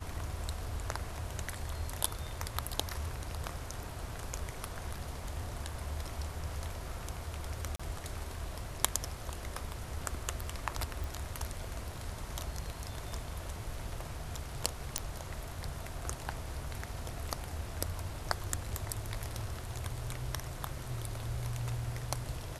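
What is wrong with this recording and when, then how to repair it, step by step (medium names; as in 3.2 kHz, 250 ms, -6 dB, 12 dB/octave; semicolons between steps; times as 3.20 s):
7.76–7.79 s: dropout 35 ms
11.04 s: pop
14.98 s: pop -13 dBFS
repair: de-click; interpolate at 7.76 s, 35 ms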